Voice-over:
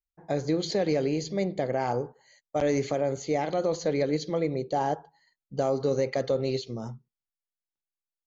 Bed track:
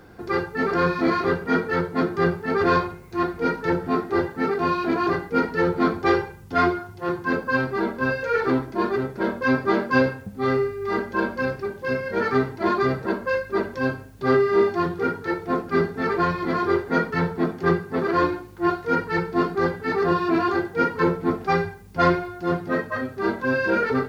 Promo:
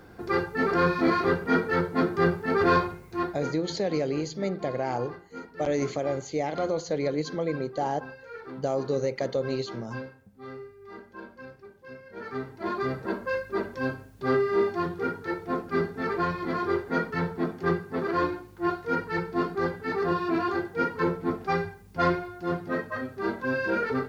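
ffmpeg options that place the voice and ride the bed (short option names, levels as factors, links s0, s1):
-filter_complex "[0:a]adelay=3050,volume=0.841[s0];[1:a]volume=3.98,afade=t=out:st=2.96:d=0.67:silence=0.133352,afade=t=in:st=12.09:d=1.04:silence=0.199526[s1];[s0][s1]amix=inputs=2:normalize=0"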